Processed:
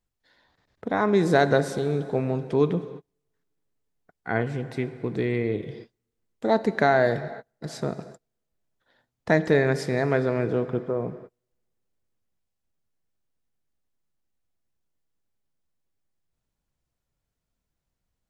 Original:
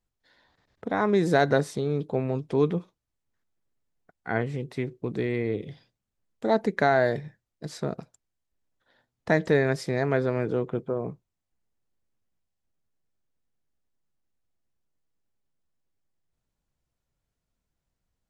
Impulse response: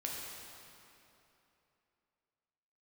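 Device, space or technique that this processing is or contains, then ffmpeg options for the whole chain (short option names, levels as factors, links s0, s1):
keyed gated reverb: -filter_complex "[0:a]asplit=3[s0][s1][s2];[1:a]atrim=start_sample=2205[s3];[s1][s3]afir=irnorm=-1:irlink=0[s4];[s2]apad=whole_len=806774[s5];[s4][s5]sidechaingate=range=0.0126:threshold=0.00251:ratio=16:detection=peak,volume=0.299[s6];[s0][s6]amix=inputs=2:normalize=0"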